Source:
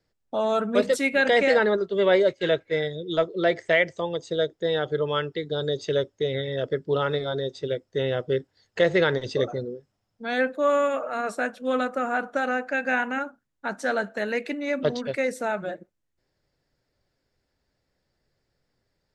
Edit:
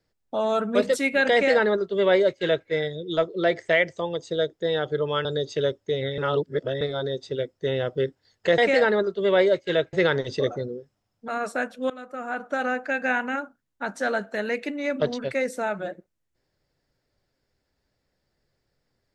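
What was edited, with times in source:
1.32–2.67 s: copy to 8.90 s
5.25–5.57 s: delete
6.50–7.13 s: reverse
10.25–11.11 s: delete
11.73–12.47 s: fade in, from -22 dB

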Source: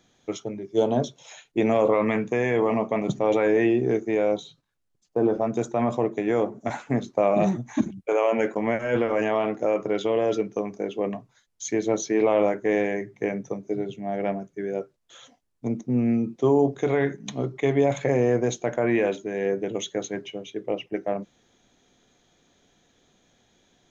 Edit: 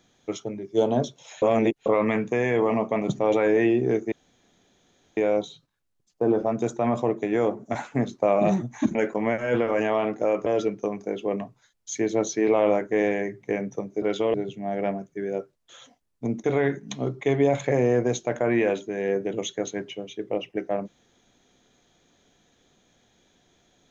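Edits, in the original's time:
1.42–1.86 s: reverse
4.12 s: insert room tone 1.05 s
7.90–8.36 s: delete
9.87–10.19 s: move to 13.75 s
15.85–16.81 s: delete

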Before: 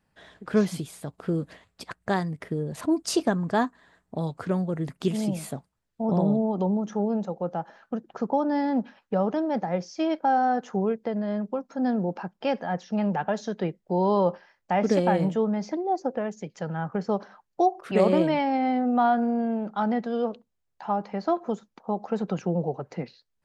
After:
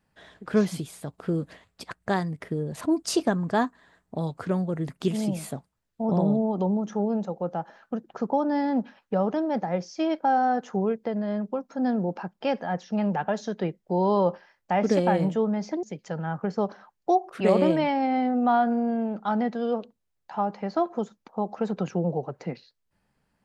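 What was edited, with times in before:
15.83–16.34 s: delete

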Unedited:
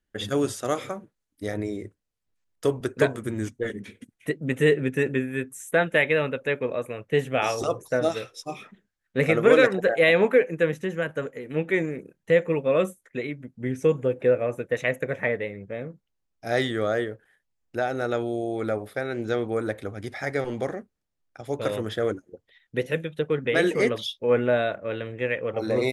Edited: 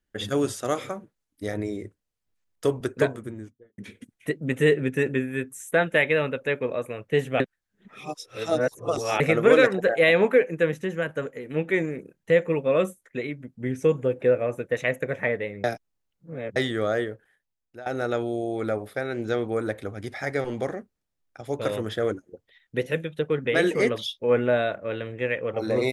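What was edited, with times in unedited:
2.83–3.78 s: studio fade out
7.40–9.20 s: reverse
15.64–16.56 s: reverse
17.09–17.86 s: fade out, to -17.5 dB

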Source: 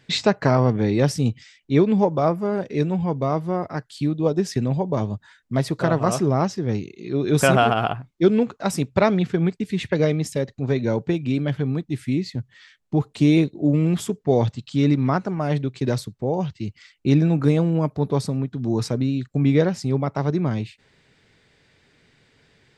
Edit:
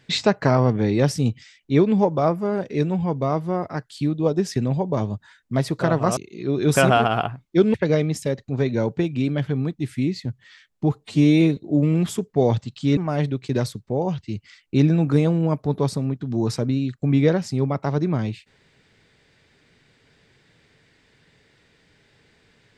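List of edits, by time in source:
6.17–6.83 s: delete
8.40–9.84 s: delete
13.10–13.48 s: stretch 1.5×
14.88–15.29 s: delete

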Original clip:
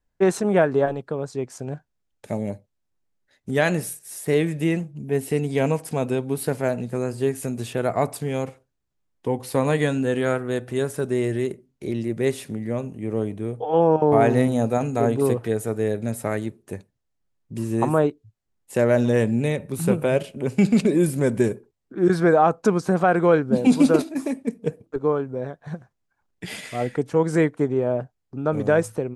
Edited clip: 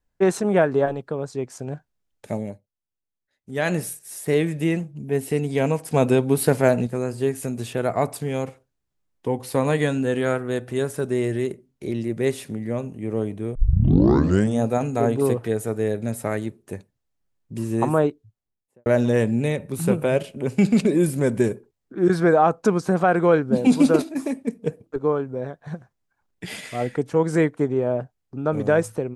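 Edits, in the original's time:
2.35–3.74 s: dip -12.5 dB, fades 0.27 s
5.94–6.87 s: gain +6 dB
13.55 s: tape start 1.06 s
18.07–18.86 s: studio fade out

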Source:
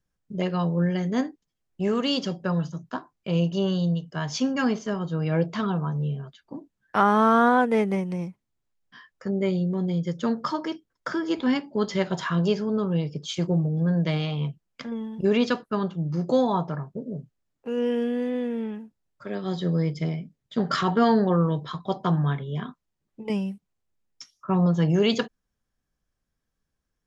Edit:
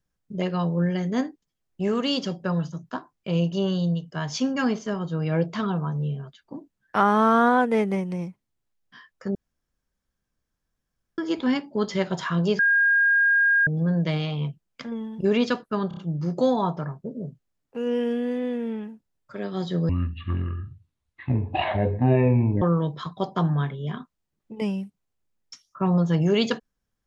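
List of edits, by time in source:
9.35–11.18 s: room tone
12.59–13.67 s: bleep 1.62 kHz -16 dBFS
15.88 s: stutter 0.03 s, 4 plays
19.80–21.30 s: speed 55%

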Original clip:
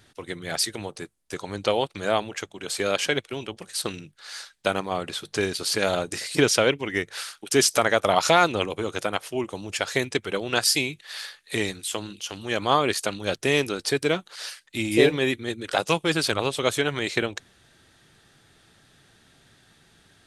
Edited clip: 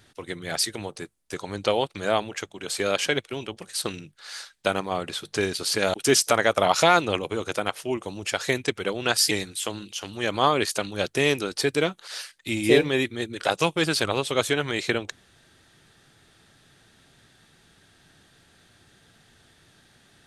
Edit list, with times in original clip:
5.94–7.41 s: delete
10.78–11.59 s: delete

